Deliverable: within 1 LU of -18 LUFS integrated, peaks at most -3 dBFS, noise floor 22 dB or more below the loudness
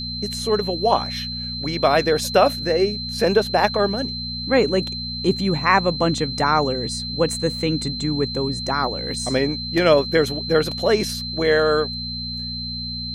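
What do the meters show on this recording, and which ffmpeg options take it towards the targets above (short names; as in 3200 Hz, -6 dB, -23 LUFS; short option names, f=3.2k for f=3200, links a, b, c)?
hum 60 Hz; harmonics up to 240 Hz; hum level -31 dBFS; steady tone 4100 Hz; tone level -28 dBFS; loudness -21.0 LUFS; peak -2.5 dBFS; loudness target -18.0 LUFS
-> -af "bandreject=f=60:t=h:w=4,bandreject=f=120:t=h:w=4,bandreject=f=180:t=h:w=4,bandreject=f=240:t=h:w=4"
-af "bandreject=f=4.1k:w=30"
-af "volume=3dB,alimiter=limit=-3dB:level=0:latency=1"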